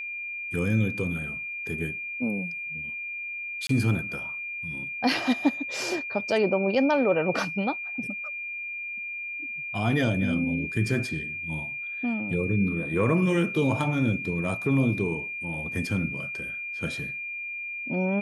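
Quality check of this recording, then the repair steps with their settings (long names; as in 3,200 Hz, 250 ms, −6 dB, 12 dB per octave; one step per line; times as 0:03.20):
whistle 2,400 Hz −32 dBFS
0:03.67–0:03.69: drop-out 23 ms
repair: notch filter 2,400 Hz, Q 30
repair the gap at 0:03.67, 23 ms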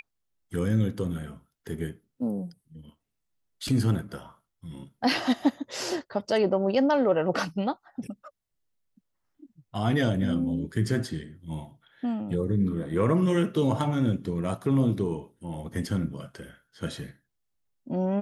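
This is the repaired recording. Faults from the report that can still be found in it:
none of them is left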